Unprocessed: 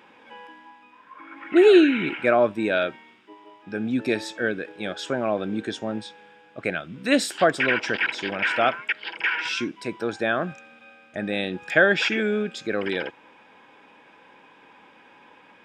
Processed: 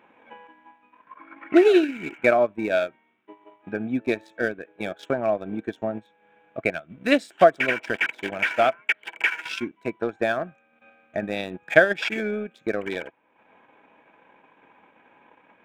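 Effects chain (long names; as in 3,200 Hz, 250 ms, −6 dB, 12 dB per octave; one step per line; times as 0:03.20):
adaptive Wiener filter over 9 samples
transient designer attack +7 dB, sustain −10 dB
hollow resonant body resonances 660/2,300 Hz, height 8 dB
level −4 dB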